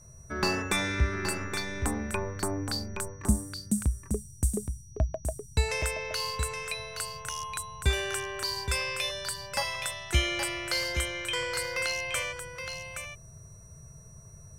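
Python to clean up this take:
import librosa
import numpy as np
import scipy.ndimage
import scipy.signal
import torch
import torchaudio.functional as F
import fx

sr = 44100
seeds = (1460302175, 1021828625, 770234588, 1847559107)

y = fx.notch(x, sr, hz=5800.0, q=30.0)
y = fx.fix_interpolate(y, sr, at_s=(5.82, 8.43), length_ms=2.6)
y = fx.noise_reduce(y, sr, print_start_s=13.92, print_end_s=14.42, reduce_db=28.0)
y = fx.fix_echo_inverse(y, sr, delay_ms=821, level_db=-7.0)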